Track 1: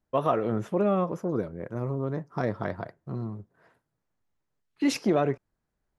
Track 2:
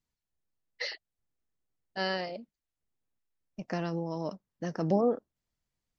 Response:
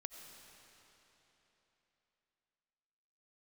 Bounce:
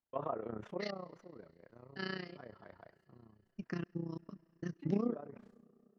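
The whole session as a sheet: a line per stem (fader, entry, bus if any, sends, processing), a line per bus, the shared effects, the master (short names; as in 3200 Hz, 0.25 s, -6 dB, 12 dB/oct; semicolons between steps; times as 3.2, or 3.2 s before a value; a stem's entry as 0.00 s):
0.75 s -8 dB -> 1.23 s -18 dB, 0.00 s, send -21.5 dB, treble ducked by the level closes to 1100 Hz, closed at -20.5 dBFS; tilt +2.5 dB/oct; sustainer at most 120 dB/s
-2.0 dB, 0.00 s, send -12.5 dB, band shelf 680 Hz -14.5 dB 1.1 oct; step gate "..x.xxxx.xx.x" 133 bpm -60 dB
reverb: on, RT60 3.6 s, pre-delay 50 ms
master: AM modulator 30 Hz, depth 70%; high shelf 2500 Hz -9 dB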